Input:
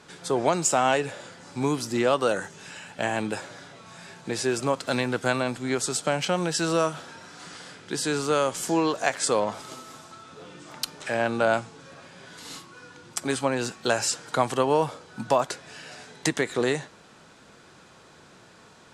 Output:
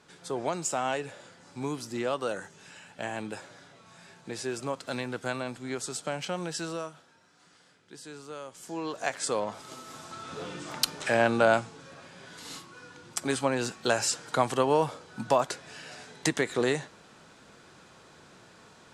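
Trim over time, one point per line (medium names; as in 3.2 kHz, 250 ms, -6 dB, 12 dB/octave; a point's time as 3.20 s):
6.58 s -8 dB
7.05 s -18 dB
8.51 s -18 dB
9.06 s -6 dB
9.60 s -6 dB
10.35 s +6.5 dB
11.90 s -2 dB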